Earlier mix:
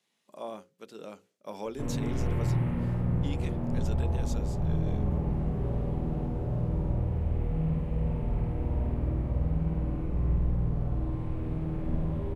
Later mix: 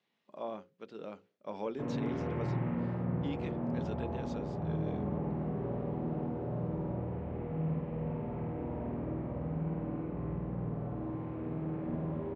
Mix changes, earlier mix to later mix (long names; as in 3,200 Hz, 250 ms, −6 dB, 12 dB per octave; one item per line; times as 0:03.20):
speech: add high-frequency loss of the air 220 metres
background: add band-pass filter 180–2,100 Hz